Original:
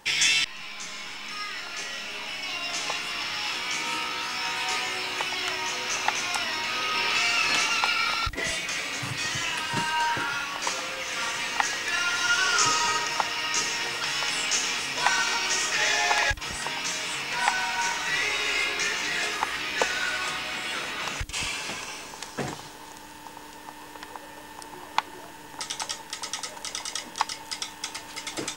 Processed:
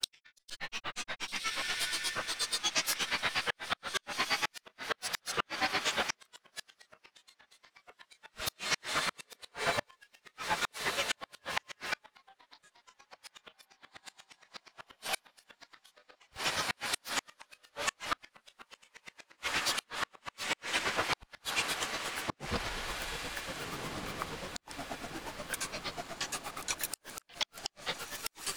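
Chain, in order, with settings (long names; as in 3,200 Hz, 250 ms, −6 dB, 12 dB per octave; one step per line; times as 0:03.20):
granular cloud 92 ms, grains 8.4 per second, pitch spread up and down by 12 semitones
feedback delay with all-pass diffusion 1,617 ms, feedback 46%, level −8.5 dB
gate with flip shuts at −20 dBFS, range −39 dB
level +3 dB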